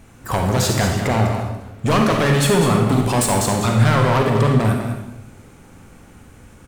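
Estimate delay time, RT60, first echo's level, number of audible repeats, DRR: 199 ms, 0.90 s, −8.5 dB, 1, 0.5 dB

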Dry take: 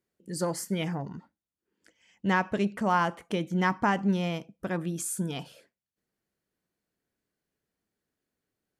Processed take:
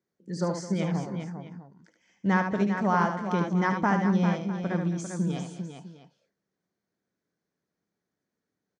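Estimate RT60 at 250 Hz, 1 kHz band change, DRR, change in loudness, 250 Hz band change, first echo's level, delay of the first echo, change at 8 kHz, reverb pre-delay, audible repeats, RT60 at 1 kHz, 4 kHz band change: no reverb audible, +1.0 dB, no reverb audible, +2.0 dB, +3.5 dB, −6.5 dB, 74 ms, −7.0 dB, no reverb audible, 4, no reverb audible, −4.5 dB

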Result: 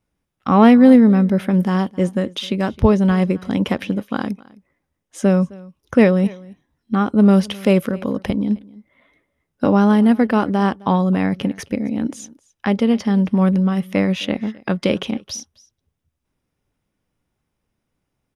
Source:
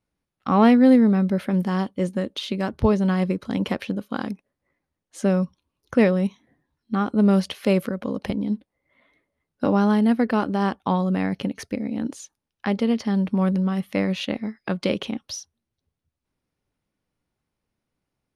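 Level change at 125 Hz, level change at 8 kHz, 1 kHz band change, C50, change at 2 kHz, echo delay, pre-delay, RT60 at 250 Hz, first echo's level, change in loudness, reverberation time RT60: +5.5 dB, can't be measured, +4.5 dB, no reverb audible, +4.5 dB, 262 ms, no reverb audible, no reverb audible, −22.5 dB, +5.5 dB, no reverb audible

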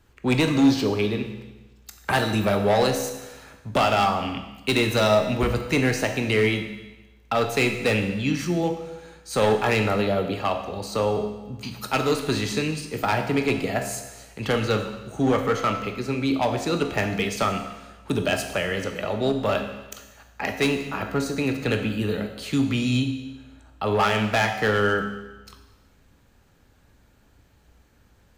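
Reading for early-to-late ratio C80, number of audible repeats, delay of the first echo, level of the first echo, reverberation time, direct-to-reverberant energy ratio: 9.0 dB, no echo audible, no echo audible, no echo audible, 1.1 s, 5.0 dB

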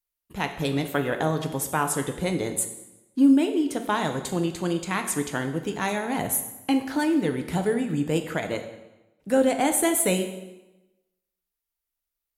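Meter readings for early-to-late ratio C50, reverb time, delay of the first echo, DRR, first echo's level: 9.5 dB, 1.0 s, no echo audible, 6.0 dB, no echo audible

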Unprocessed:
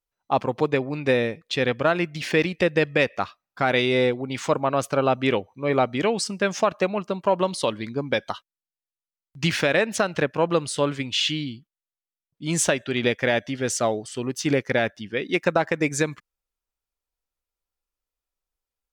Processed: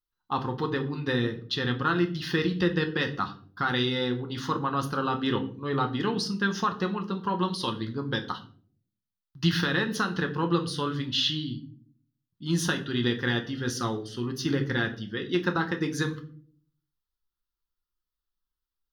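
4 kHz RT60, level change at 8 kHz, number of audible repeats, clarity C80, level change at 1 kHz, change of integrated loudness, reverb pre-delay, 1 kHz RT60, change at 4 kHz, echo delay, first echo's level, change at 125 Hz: 0.35 s, −10.0 dB, no echo audible, 17.5 dB, −4.0 dB, −4.5 dB, 6 ms, 0.40 s, −1.5 dB, no echo audible, no echo audible, 0.0 dB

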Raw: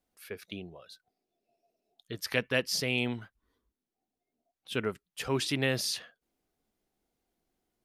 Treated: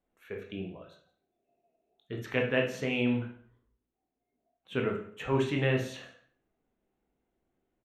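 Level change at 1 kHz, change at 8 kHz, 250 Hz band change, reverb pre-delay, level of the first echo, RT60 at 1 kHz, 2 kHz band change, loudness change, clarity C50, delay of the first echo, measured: +2.0 dB, −14.5 dB, +4.0 dB, 15 ms, −20.0 dB, 0.55 s, −1.0 dB, +0.5 dB, 7.0 dB, 171 ms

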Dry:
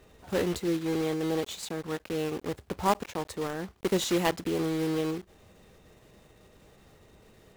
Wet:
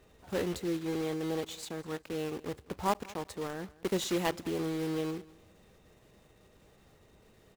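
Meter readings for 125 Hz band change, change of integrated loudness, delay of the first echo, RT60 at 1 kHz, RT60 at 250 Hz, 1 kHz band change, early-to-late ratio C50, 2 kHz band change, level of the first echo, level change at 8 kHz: −4.5 dB, −4.5 dB, 202 ms, no reverb audible, no reverb audible, −4.5 dB, no reverb audible, −4.5 dB, −21.5 dB, −4.5 dB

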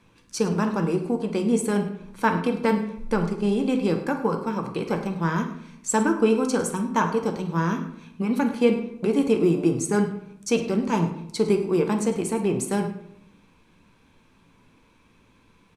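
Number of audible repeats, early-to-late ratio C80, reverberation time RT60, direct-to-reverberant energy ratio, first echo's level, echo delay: 1, 11.0 dB, 0.75 s, 4.0 dB, −15.5 dB, 104 ms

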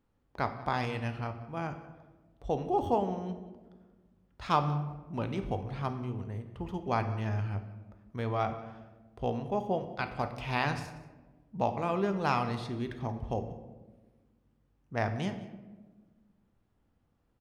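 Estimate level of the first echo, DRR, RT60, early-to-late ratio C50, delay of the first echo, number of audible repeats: −20.0 dB, 7.5 dB, 1.3 s, 10.0 dB, 184 ms, 1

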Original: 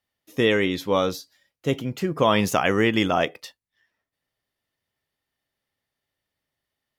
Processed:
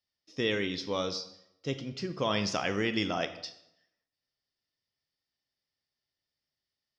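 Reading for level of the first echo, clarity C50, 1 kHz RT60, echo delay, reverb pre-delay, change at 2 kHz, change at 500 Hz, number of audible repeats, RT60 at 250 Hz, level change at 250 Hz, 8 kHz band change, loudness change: no echo audible, 12.5 dB, 0.80 s, no echo audible, 24 ms, −9.0 dB, −10.5 dB, no echo audible, 0.85 s, −10.0 dB, −7.0 dB, −9.5 dB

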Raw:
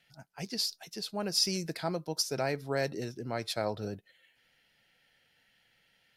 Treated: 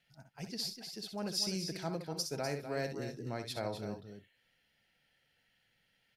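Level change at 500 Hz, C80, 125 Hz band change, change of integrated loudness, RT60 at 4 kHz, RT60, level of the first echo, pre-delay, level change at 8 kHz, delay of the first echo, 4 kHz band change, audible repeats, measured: −5.0 dB, no reverb audible, −3.0 dB, −5.0 dB, no reverb audible, no reverb audible, −8.5 dB, no reverb audible, −6.0 dB, 63 ms, −6.0 dB, 3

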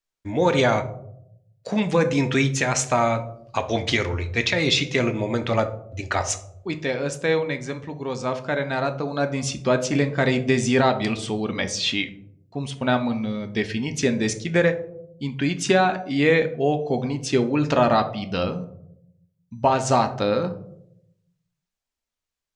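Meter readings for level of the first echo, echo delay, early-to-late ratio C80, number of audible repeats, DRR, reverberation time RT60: no echo audible, no echo audible, 16.5 dB, no echo audible, 7.0 dB, 0.75 s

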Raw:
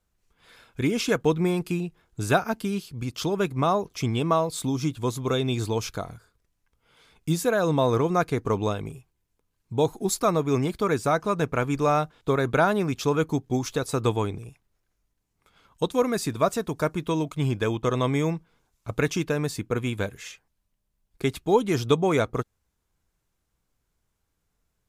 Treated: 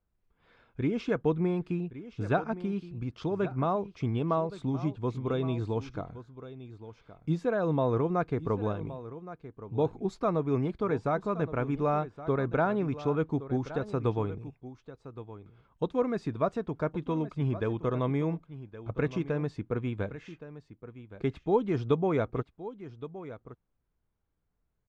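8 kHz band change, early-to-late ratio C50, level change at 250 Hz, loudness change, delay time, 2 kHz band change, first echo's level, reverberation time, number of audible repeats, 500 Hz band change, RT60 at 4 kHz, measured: below −25 dB, no reverb audible, −4.0 dB, −5.5 dB, 1,119 ms, −9.0 dB, −14.5 dB, no reverb audible, 1, −5.0 dB, no reverb audible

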